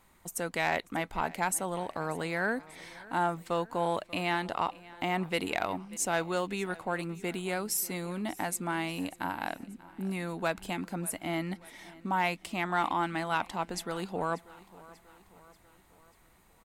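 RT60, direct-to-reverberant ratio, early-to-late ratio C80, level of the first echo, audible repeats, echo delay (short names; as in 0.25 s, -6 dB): none, none, none, -20.5 dB, 3, 0.588 s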